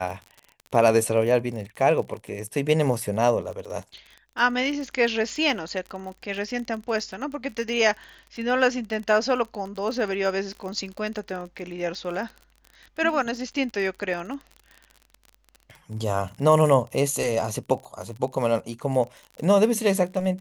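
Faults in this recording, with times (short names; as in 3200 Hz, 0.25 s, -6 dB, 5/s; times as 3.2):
crackle 38/s -33 dBFS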